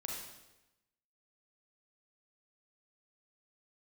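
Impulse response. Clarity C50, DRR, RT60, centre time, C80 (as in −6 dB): 0.5 dB, −2.0 dB, 1.0 s, 61 ms, 4.0 dB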